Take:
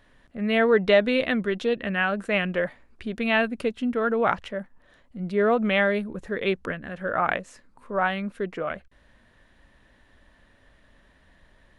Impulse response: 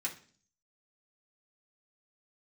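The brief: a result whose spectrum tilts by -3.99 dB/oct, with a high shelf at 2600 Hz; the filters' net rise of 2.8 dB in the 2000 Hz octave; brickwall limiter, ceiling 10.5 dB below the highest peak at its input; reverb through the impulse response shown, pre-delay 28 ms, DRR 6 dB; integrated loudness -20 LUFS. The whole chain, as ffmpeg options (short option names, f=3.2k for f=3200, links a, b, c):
-filter_complex "[0:a]equalizer=f=2k:t=o:g=7,highshelf=f=2.6k:g=-8.5,alimiter=limit=-15dB:level=0:latency=1,asplit=2[a][b];[1:a]atrim=start_sample=2205,adelay=28[c];[b][c]afir=irnorm=-1:irlink=0,volume=-7.5dB[d];[a][d]amix=inputs=2:normalize=0,volume=6dB"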